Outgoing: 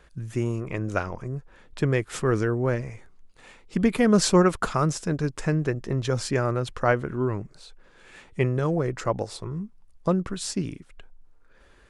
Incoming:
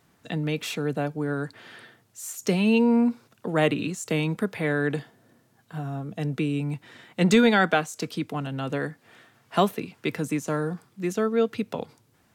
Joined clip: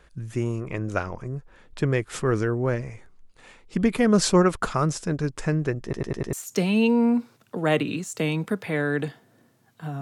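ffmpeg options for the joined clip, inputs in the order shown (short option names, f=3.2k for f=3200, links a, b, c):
-filter_complex "[0:a]apad=whole_dur=10.01,atrim=end=10.01,asplit=5[a][b][c][d][e];[a]atrim=end=5.932[f];[b]atrim=start=5.828:end=5.932[g];[c]atrim=start=5.828:end=5.932[h];[d]atrim=start=5.828:end=5.932[i];[e]atrim=start=5.828:end=5.932[j];[1:a]atrim=start=2.238:end=5.92[k];[f][g]acrossfade=d=0.004:c1=hsin:c2=hsin[l];[l][h]acrossfade=d=0.004:c1=hsin:c2=hsin[m];[m][i]acrossfade=d=0.004:c1=hsin:c2=hsin[n];[n][j]acrossfade=d=0.004:c1=hsin:c2=hsin[o];[o][k]acrossfade=d=0.004:c1=hsin:c2=hsin"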